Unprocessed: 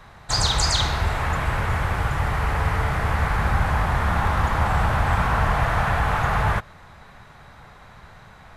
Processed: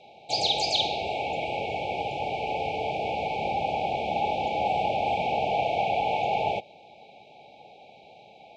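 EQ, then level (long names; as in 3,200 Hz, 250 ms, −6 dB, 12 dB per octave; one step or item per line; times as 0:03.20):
band-pass filter 400–3,700 Hz
linear-phase brick-wall band-stop 870–2,200 Hz
high-frequency loss of the air 60 metres
+3.5 dB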